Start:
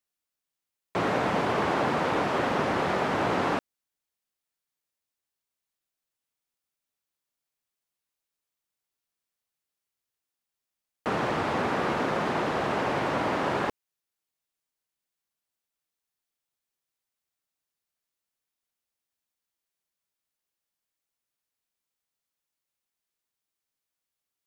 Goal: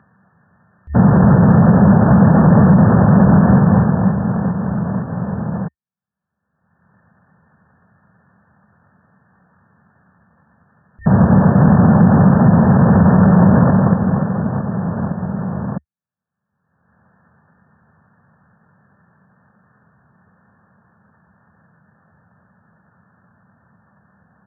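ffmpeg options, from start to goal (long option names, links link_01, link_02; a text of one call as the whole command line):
ffmpeg -i in.wav -af "lowshelf=frequency=380:width_type=q:width=3:gain=8,agate=range=-33dB:threshold=-21dB:ratio=3:detection=peak,afftfilt=real='re*between(b*sr/4096,110,2800)':imag='im*between(b*sr/4096,110,2800)':win_size=4096:overlap=0.75,aecho=1:1:230|529|917.7|1423|2080:0.631|0.398|0.251|0.158|0.1,acompressor=mode=upward:threshold=-24dB:ratio=2.5,asetrate=28595,aresample=44100,atempo=1.54221,alimiter=level_in=13dB:limit=-1dB:release=50:level=0:latency=1,volume=-1dB" out.wav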